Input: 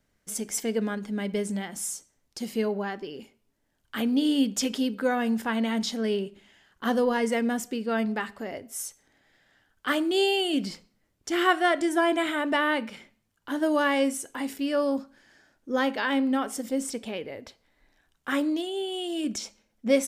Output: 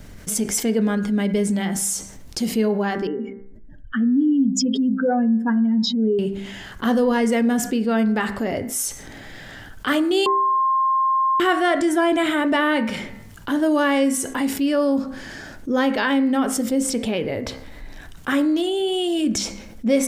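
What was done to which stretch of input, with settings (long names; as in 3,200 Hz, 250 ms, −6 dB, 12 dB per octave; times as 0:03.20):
0:03.07–0:06.19: expanding power law on the bin magnitudes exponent 2.5
0:10.26–0:11.40: beep over 1,060 Hz −20.5 dBFS
whole clip: low-shelf EQ 240 Hz +10 dB; hum removal 65.43 Hz, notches 34; envelope flattener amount 50%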